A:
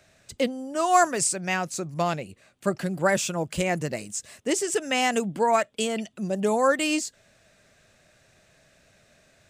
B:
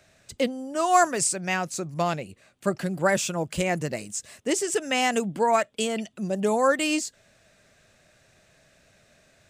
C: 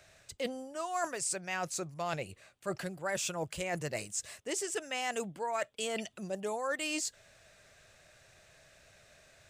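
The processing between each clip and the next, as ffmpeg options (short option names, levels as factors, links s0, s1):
-af anull
-af "equalizer=f=230:t=o:w=1.2:g=-9.5,areverse,acompressor=threshold=0.0224:ratio=5,areverse"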